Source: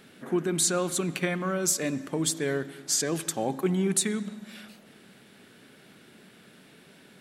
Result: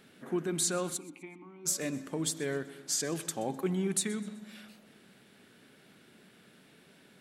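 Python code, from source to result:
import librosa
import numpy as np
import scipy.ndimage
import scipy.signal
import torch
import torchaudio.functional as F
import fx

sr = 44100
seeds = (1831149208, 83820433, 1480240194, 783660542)

y = fx.vowel_filter(x, sr, vowel='u', at=(0.96, 1.65), fade=0.02)
y = fx.echo_feedback(y, sr, ms=127, feedback_pct=41, wet_db=-20.0)
y = F.gain(torch.from_numpy(y), -5.5).numpy()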